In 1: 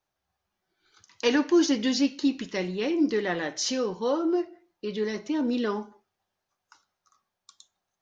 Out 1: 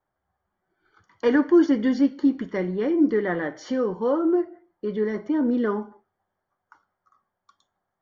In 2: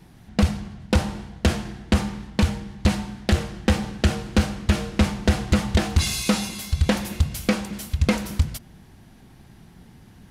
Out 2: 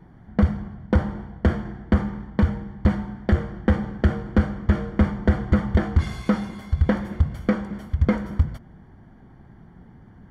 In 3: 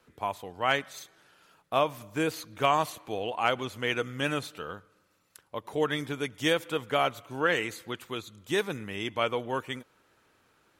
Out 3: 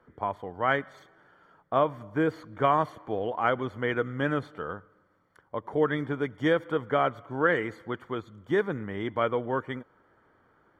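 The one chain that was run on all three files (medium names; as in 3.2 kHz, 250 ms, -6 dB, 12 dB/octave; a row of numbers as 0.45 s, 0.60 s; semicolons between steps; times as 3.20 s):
dynamic bell 800 Hz, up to -4 dB, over -38 dBFS, Q 1.8; Savitzky-Golay filter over 41 samples; peak normalisation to -9 dBFS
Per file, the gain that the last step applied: +4.5 dB, +1.0 dB, +4.0 dB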